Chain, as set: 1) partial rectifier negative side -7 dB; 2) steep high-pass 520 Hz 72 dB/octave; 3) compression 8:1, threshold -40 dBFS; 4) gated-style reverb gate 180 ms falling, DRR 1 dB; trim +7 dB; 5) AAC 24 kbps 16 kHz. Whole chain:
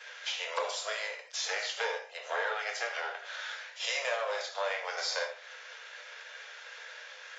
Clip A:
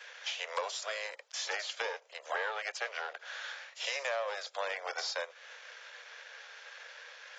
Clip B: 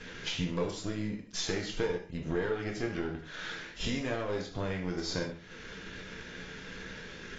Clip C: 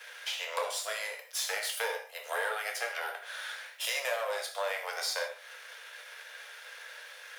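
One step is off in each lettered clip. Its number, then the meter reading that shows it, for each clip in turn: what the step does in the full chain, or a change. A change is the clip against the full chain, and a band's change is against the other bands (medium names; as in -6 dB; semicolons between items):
4, loudness change -2.5 LU; 2, 500 Hz band +6.0 dB; 5, 8 kHz band +3.5 dB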